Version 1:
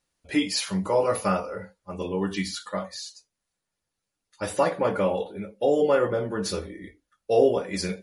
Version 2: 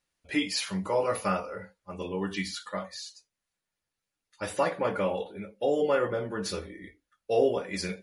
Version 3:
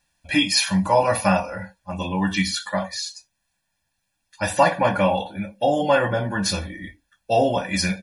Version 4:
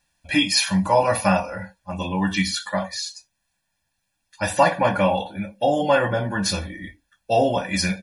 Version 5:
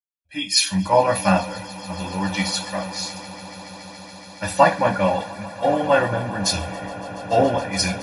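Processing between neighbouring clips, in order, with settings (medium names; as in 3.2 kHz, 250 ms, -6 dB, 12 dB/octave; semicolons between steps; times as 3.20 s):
peaking EQ 2.2 kHz +4.5 dB 1.7 oct; trim -5 dB
comb 1.2 ms, depth 91%; trim +8.5 dB
no audible change
fade-in on the opening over 0.72 s; echo with a slow build-up 141 ms, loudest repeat 8, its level -16 dB; three bands expanded up and down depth 70%; trim -1 dB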